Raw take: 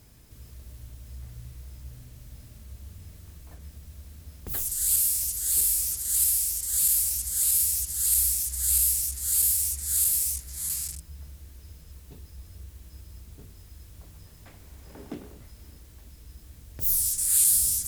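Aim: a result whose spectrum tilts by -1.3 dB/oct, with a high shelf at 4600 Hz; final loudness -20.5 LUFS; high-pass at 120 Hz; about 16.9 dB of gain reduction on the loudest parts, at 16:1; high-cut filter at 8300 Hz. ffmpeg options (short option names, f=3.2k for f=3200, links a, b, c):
-af "highpass=120,lowpass=8.3k,highshelf=f=4.6k:g=4.5,acompressor=threshold=-34dB:ratio=16,volume=16.5dB"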